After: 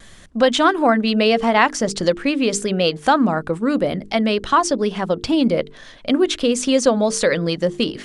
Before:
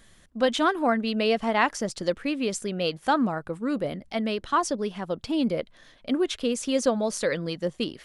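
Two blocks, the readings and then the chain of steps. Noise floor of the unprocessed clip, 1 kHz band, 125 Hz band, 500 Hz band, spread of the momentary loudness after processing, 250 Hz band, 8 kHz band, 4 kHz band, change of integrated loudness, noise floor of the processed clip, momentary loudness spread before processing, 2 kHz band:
-56 dBFS, +8.0 dB, +9.0 dB, +8.5 dB, 6 LU, +8.0 dB, +9.0 dB, +9.0 dB, +8.5 dB, -42 dBFS, 7 LU, +8.0 dB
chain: LPF 9800 Hz 24 dB/oct; notches 50/100/150/200/250/300/350/400/450 Hz; in parallel at +2 dB: compressor, threshold -30 dBFS, peak gain reduction 13 dB; on the sum: vibrato 0.83 Hz 18 cents; gain +5 dB

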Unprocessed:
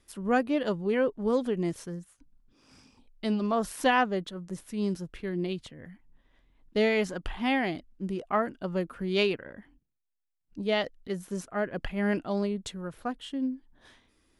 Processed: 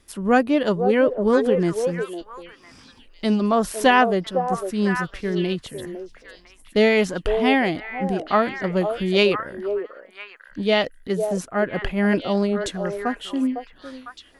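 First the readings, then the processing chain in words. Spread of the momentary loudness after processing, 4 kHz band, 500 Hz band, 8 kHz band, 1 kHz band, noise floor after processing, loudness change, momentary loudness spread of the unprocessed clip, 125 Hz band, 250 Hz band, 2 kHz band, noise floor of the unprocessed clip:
17 LU, +8.5 dB, +9.5 dB, +8.0 dB, +9.0 dB, -51 dBFS, +8.5 dB, 12 LU, +8.0 dB, +8.0 dB, +8.5 dB, -73 dBFS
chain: delay with a stepping band-pass 0.504 s, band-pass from 550 Hz, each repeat 1.4 oct, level -3.5 dB; gain +8 dB

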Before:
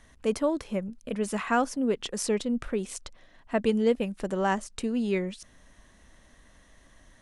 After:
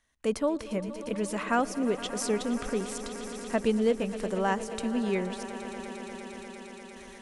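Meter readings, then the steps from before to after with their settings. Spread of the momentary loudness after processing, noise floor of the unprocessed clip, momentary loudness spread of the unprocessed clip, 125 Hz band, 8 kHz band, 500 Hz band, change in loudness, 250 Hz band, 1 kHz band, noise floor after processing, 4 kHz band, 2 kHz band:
14 LU, -58 dBFS, 9 LU, -1.0 dB, 0.0 dB, -1.0 dB, -1.5 dB, -1.0 dB, -0.5 dB, -47 dBFS, 0.0 dB, -0.5 dB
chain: gate with hold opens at -45 dBFS; swelling echo 0.117 s, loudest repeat 5, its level -17 dB; mismatched tape noise reduction encoder only; gain -1.5 dB

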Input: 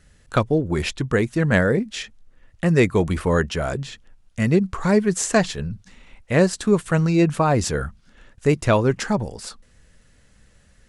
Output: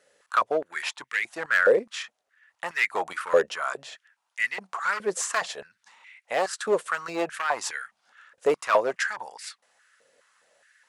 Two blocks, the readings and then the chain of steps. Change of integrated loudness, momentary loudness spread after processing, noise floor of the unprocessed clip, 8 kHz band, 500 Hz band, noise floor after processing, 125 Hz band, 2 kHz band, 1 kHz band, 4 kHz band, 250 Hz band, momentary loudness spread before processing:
-6.0 dB, 15 LU, -56 dBFS, -5.0 dB, -5.0 dB, -78 dBFS, -32.5 dB, +0.5 dB, -1.0 dB, -4.0 dB, -20.0 dB, 14 LU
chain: overloaded stage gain 13.5 dB; stepped high-pass 4.8 Hz 520–2000 Hz; gain -5 dB

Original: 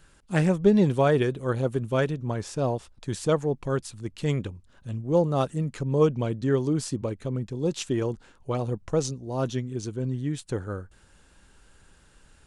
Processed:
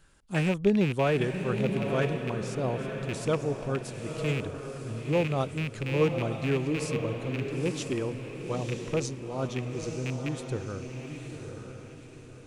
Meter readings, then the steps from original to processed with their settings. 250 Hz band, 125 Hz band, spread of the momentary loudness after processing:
-3.5 dB, -3.0 dB, 13 LU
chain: rattling part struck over -26 dBFS, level -20 dBFS; diffused feedback echo 0.947 s, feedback 40%, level -6 dB; gain -4.5 dB

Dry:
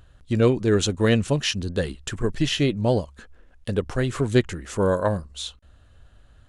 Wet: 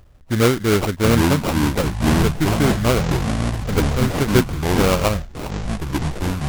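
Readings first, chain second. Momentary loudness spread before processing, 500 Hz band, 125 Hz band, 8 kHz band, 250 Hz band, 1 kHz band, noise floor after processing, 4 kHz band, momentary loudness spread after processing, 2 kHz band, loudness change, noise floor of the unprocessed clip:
10 LU, +2.5 dB, +6.0 dB, +6.0 dB, +6.0 dB, +9.5 dB, -41 dBFS, +2.5 dB, 8 LU, +6.5 dB, +4.5 dB, -53 dBFS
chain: sample-rate reducer 1800 Hz, jitter 20%; echoes that change speed 0.602 s, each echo -6 st, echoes 3; gain +2.5 dB

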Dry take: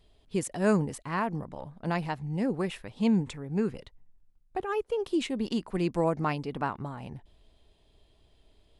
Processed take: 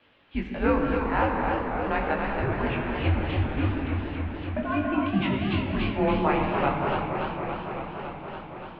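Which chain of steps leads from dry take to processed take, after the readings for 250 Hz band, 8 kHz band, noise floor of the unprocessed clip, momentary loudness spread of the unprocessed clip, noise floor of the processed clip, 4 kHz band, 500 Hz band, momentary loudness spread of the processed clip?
+2.5 dB, under -30 dB, -65 dBFS, 12 LU, -42 dBFS, +4.5 dB, +3.5 dB, 10 LU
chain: low shelf 360 Hz -10 dB; non-linear reverb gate 0.38 s flat, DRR 1.5 dB; requantised 10-bit, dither triangular; mistuned SSB -140 Hz 160–3300 Hz; chorus 0.4 Hz, delay 20 ms, depth 2.4 ms; warbling echo 0.282 s, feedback 79%, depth 157 cents, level -6 dB; gain +8.5 dB

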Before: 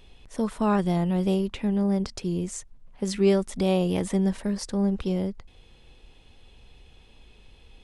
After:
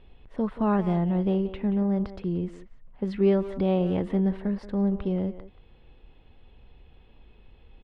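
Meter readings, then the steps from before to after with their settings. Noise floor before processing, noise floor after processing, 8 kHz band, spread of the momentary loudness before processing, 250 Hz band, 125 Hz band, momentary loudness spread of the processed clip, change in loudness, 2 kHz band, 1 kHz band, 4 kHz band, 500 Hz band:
-54 dBFS, -55 dBFS, under -25 dB, 9 LU, -0.5 dB, -0.5 dB, 10 LU, -0.5 dB, -4.5 dB, -1.5 dB, under -10 dB, -1.0 dB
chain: air absorption 430 m; notch 2400 Hz, Q 23; speakerphone echo 0.18 s, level -12 dB

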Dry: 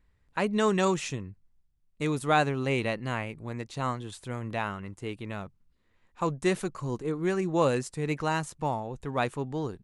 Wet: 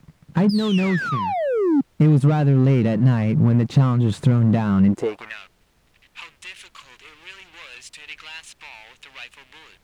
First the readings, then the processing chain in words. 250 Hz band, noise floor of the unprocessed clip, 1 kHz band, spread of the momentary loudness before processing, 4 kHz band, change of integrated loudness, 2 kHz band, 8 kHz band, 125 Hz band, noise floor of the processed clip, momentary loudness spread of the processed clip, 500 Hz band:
+11.5 dB, -69 dBFS, +1.0 dB, 13 LU, +4.5 dB, +11.5 dB, +2.0 dB, n/a, +15.5 dB, -61 dBFS, 21 LU, +3.5 dB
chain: painted sound fall, 0.49–1.81, 260–5200 Hz -24 dBFS; compressor 10:1, threshold -39 dBFS, peak gain reduction 21 dB; sample leveller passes 5; high-pass sweep 160 Hz -> 2700 Hz, 4.85–5.39; requantised 10-bit, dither triangular; RIAA curve playback; gain +2.5 dB

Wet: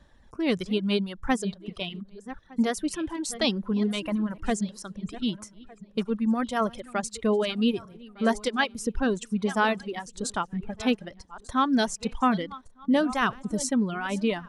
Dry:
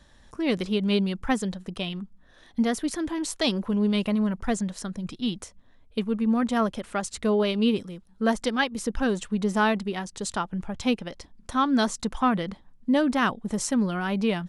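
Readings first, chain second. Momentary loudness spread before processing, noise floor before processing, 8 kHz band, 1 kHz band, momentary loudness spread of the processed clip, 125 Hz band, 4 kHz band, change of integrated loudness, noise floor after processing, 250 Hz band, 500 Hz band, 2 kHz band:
10 LU, -55 dBFS, -0.5 dB, -0.5 dB, 11 LU, -3.0 dB, -0.5 dB, -1.5 dB, -56 dBFS, -2.0 dB, -1.0 dB, -0.5 dB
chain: regenerating reverse delay 0.604 s, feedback 46%, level -13 dB; reverb removal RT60 1.9 s; mismatched tape noise reduction decoder only

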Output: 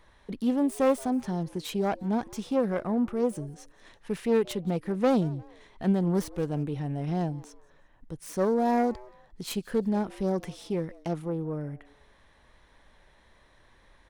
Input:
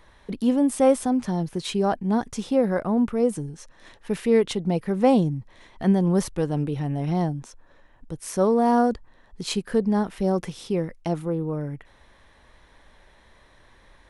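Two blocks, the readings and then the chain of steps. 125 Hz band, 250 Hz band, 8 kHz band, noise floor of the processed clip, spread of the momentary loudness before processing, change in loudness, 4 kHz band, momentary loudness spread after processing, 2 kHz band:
-5.0 dB, -5.0 dB, -7.5 dB, -61 dBFS, 13 LU, -5.0 dB, -6.5 dB, 13 LU, -4.5 dB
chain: self-modulated delay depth 0.21 ms; frequency-shifting echo 0.176 s, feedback 31%, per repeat +140 Hz, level -23.5 dB; gain -5 dB

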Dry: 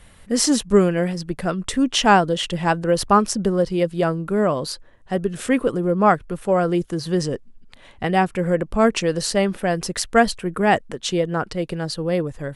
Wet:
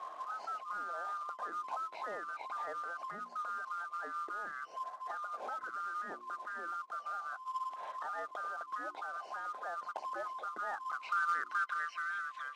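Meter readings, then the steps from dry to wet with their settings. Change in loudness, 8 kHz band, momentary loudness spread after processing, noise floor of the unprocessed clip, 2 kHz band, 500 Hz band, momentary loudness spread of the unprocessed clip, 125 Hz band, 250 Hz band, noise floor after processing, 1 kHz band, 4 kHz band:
-19.0 dB, under -30 dB, 7 LU, -48 dBFS, -12.5 dB, -29.5 dB, 9 LU, under -40 dB, under -40 dB, -52 dBFS, -14.0 dB, -29.5 dB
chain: band-swap scrambler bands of 1000 Hz; de-esser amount 95%; notches 60/120/180/240/300/360 Hz; compressor 16:1, threshold -34 dBFS, peak gain reduction 20.5 dB; limiter -33 dBFS, peak gain reduction 10.5 dB; band-pass sweep 720 Hz -> 2600 Hz, 10.4–12.37; short-mantissa float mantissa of 2-bit; BPF 210–6000 Hz; gain +9.5 dB

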